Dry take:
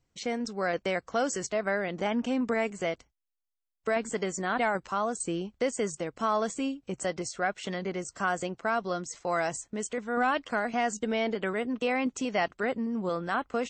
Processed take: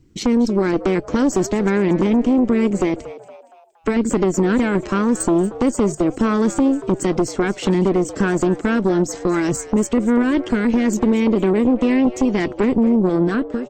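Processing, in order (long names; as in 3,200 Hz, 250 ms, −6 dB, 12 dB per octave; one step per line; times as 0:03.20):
fade-out on the ending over 0.58 s
low shelf with overshoot 460 Hz +10.5 dB, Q 3
downward compressor 6 to 1, threshold −23 dBFS, peak gain reduction 11.5 dB
harmonic generator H 5 −9 dB, 6 −12 dB, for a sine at −12 dBFS
echo with shifted repeats 233 ms, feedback 43%, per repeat +120 Hz, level −16.5 dB
level +2.5 dB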